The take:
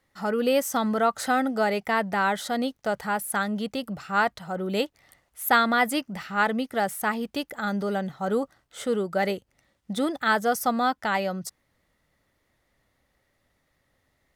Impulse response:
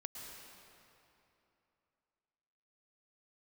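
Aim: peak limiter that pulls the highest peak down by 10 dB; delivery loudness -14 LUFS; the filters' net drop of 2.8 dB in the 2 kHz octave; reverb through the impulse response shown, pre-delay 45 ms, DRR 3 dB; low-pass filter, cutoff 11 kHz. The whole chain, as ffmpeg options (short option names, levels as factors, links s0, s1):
-filter_complex "[0:a]lowpass=11000,equalizer=f=2000:t=o:g=-4,alimiter=limit=0.119:level=0:latency=1,asplit=2[s0][s1];[1:a]atrim=start_sample=2205,adelay=45[s2];[s1][s2]afir=irnorm=-1:irlink=0,volume=0.944[s3];[s0][s3]amix=inputs=2:normalize=0,volume=4.73"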